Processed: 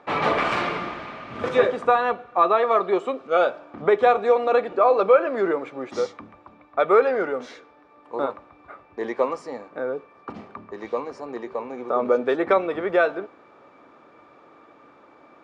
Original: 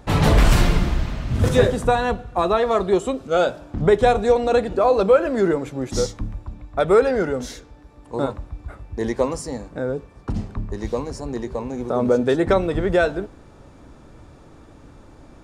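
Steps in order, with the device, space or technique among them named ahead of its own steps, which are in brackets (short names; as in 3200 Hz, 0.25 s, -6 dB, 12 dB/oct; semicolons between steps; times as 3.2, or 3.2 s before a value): tin-can telephone (BPF 410–2700 Hz; small resonant body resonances 1200/2300 Hz, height 11 dB, ringing for 45 ms)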